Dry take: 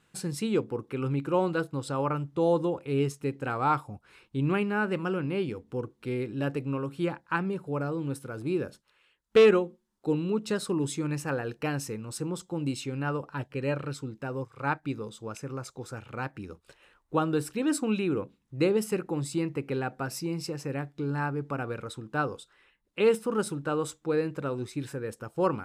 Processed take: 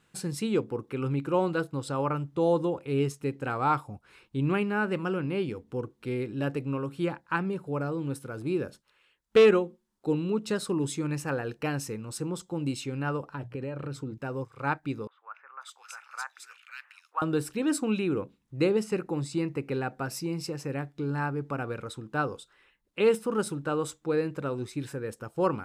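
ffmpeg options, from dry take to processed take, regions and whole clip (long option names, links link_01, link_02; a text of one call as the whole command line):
ffmpeg -i in.wav -filter_complex "[0:a]asettb=1/sr,asplit=3[link_01][link_02][link_03];[link_01]atrim=end=13.354[link_04];[link_02]atrim=start=13.35:end=14.18,asetpts=PTS-STARTPTS,afade=type=in:duration=0.004:curve=qsin,afade=type=out:start_time=0.826:duration=0.004:curve=qsin,bandreject=frequency=60:width_type=h:width=6,bandreject=frequency=120:width_type=h:width=6,bandreject=frequency=180:width_type=h:width=6,acompressor=threshold=-34dB:ratio=12:attack=3.2:release=140:knee=1:detection=peak,tiltshelf=frequency=1400:gain=4[link_05];[link_03]atrim=start=14.176[link_06];[link_04][link_05]acrossfade=duration=0.004:curve1=hsin:curve2=qsin[link_07];[link_07][link_06]acrossfade=duration=0.004:curve1=qsin:curve2=hsin,asettb=1/sr,asplit=3[link_08][link_09][link_10];[link_08]atrim=end=15.074[link_11];[link_09]atrim=start=15.07:end=17.22,asetpts=PTS-STARTPTS,afade=type=in:duration=0.004:curve=qsin,afade=type=out:start_time=2.146:duration=0.004:curve=qsin,highpass=frequency=1000:width=0.5412,highpass=frequency=1000:width=1.3066,equalizer=frequency=1800:width=0.87:gain=5,acrossover=split=1900[link_12][link_13];[link_13]adelay=540[link_14];[link_12][link_14]amix=inputs=2:normalize=0,atrim=end_sample=94815[link_15];[link_10]atrim=start=17.216[link_16];[link_11][link_15]acrossfade=duration=0.004:curve1=hsin:curve2=qsin[link_17];[link_17][link_16]acrossfade=duration=0.004:curve1=qsin:curve2=hsin,asettb=1/sr,asplit=3[link_18][link_19][link_20];[link_18]atrim=end=18.754[link_21];[link_19]atrim=start=18.75:end=19.94,asetpts=PTS-STARTPTS,afade=type=in:duration=0.004:curve=qsin,afade=type=out:start_time=1.186:duration=0.004:curve=qsin,acrossover=split=7900[link_22][link_23];[link_23]acompressor=threshold=-58dB:ratio=4:attack=1:release=60[link_24];[link_22][link_24]amix=inputs=2:normalize=0,bandreject=frequency=3200:width=14[link_25];[link_20]atrim=start=19.936[link_26];[link_21][link_25]acrossfade=duration=0.004:curve1=hsin:curve2=qsin[link_27];[link_27][link_26]acrossfade=duration=0.004:curve1=qsin:curve2=hsin" out.wav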